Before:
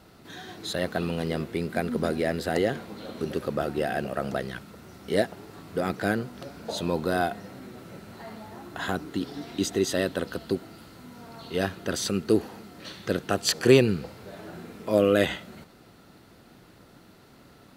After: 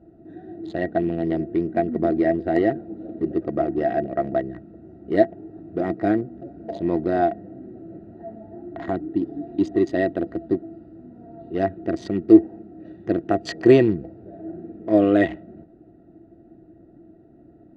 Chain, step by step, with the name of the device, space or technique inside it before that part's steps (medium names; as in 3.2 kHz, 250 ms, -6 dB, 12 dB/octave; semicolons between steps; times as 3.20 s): local Wiener filter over 41 samples; low-pass 5.5 kHz 12 dB/octave; bass shelf 140 Hz +4 dB; inside a helmet (treble shelf 3.8 kHz -9 dB; small resonant body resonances 330/670/1900 Hz, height 17 dB, ringing for 70 ms); trim -2 dB